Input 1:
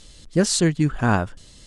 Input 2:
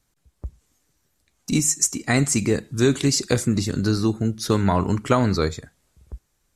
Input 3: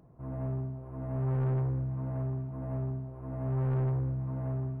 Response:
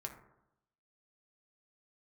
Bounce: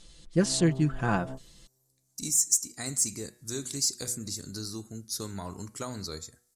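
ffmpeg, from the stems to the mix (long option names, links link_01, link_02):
-filter_complex "[0:a]aecho=1:1:5.9:0.62,volume=-8.5dB,asplit=2[link_01][link_02];[1:a]aexciter=amount=5.5:drive=6.6:freq=4200,bandreject=frequency=121:width_type=h:width=4,bandreject=frequency=242:width_type=h:width=4,bandreject=frequency=363:width_type=h:width=4,bandreject=frequency=484:width_type=h:width=4,bandreject=frequency=605:width_type=h:width=4,bandreject=frequency=726:width_type=h:width=4,bandreject=frequency=847:width_type=h:width=4,bandreject=frequency=968:width_type=h:width=4,bandreject=frequency=1089:width_type=h:width=4,bandreject=frequency=1210:width_type=h:width=4,bandreject=frequency=1331:width_type=h:width=4,bandreject=frequency=1452:width_type=h:width=4,bandreject=frequency=1573:width_type=h:width=4,bandreject=frequency=1694:width_type=h:width=4,bandreject=frequency=1815:width_type=h:width=4,bandreject=frequency=1936:width_type=h:width=4,bandreject=frequency=2057:width_type=h:width=4,bandreject=frequency=2178:width_type=h:width=4,bandreject=frequency=2299:width_type=h:width=4,bandreject=frequency=2420:width_type=h:width=4,bandreject=frequency=2541:width_type=h:width=4,bandreject=frequency=2662:width_type=h:width=4,bandreject=frequency=2783:width_type=h:width=4,bandreject=frequency=2904:width_type=h:width=4,bandreject=frequency=3025:width_type=h:width=4,bandreject=frequency=3146:width_type=h:width=4,adelay=700,volume=-18.5dB[link_03];[2:a]highpass=190,alimiter=level_in=7.5dB:limit=-24dB:level=0:latency=1,volume=-7.5dB,lowpass=1100,adelay=200,volume=1dB[link_04];[link_02]apad=whole_len=220525[link_05];[link_04][link_05]sidechaingate=range=-39dB:threshold=-40dB:ratio=16:detection=peak[link_06];[link_01][link_03][link_06]amix=inputs=3:normalize=0"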